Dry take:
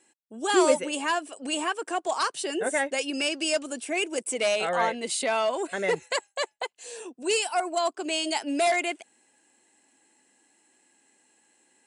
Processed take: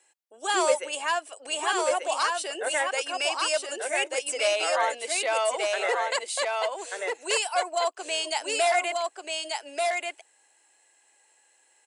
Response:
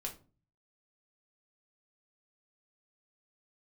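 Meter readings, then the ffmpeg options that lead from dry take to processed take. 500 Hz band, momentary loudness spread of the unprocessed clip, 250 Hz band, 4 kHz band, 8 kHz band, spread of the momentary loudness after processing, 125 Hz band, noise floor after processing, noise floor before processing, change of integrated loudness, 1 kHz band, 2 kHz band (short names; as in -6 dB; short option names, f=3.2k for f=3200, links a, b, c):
0.0 dB, 9 LU, -11.5 dB, +1.5 dB, +2.0 dB, 7 LU, under -30 dB, -65 dBFS, -70 dBFS, 0.0 dB, +1.5 dB, +1.5 dB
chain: -af "highpass=f=480:w=0.5412,highpass=f=480:w=1.3066,aecho=1:1:1187:0.708"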